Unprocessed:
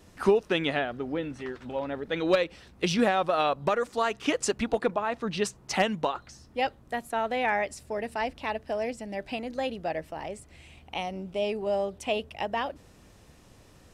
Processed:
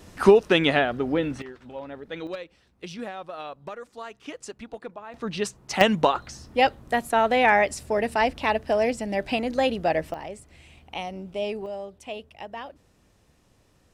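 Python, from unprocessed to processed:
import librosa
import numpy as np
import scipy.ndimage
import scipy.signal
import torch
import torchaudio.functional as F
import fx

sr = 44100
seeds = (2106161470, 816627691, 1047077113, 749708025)

y = fx.gain(x, sr, db=fx.steps((0.0, 7.0), (1.42, -5.0), (2.27, -11.5), (5.14, 0.5), (5.81, 8.0), (10.14, 0.0), (11.66, -7.0)))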